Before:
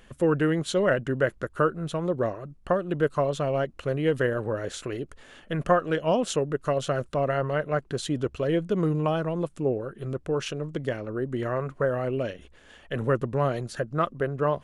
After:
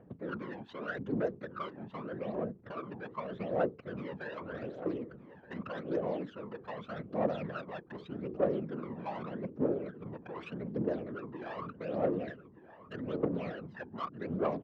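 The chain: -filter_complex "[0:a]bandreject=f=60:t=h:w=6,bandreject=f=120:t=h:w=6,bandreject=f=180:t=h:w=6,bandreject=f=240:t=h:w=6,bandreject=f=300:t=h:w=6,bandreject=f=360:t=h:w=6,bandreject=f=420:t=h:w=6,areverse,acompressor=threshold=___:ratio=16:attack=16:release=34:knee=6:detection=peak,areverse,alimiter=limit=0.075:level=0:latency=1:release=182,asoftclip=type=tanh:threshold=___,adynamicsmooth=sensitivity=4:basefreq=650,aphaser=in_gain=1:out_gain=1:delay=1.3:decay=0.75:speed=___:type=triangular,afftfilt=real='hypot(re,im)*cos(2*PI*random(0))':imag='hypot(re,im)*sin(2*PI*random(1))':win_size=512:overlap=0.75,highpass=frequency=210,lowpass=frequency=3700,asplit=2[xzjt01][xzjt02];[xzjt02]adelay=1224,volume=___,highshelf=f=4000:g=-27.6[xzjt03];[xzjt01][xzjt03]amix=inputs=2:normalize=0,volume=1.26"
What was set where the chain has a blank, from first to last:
0.0251, 0.0501, 0.83, 0.224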